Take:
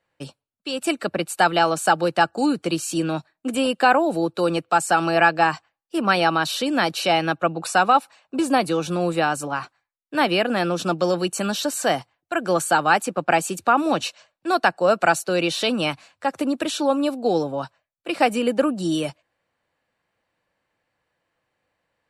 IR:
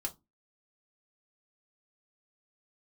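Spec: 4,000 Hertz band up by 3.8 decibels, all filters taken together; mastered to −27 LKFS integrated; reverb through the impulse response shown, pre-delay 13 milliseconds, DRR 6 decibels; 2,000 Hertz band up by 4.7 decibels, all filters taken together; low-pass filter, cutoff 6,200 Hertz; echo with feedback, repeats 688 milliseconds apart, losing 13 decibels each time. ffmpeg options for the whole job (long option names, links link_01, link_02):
-filter_complex "[0:a]lowpass=6200,equalizer=frequency=2000:width_type=o:gain=6,equalizer=frequency=4000:width_type=o:gain=3,aecho=1:1:688|1376|2064:0.224|0.0493|0.0108,asplit=2[link_01][link_02];[1:a]atrim=start_sample=2205,adelay=13[link_03];[link_02][link_03]afir=irnorm=-1:irlink=0,volume=-6.5dB[link_04];[link_01][link_04]amix=inputs=2:normalize=0,volume=-8.5dB"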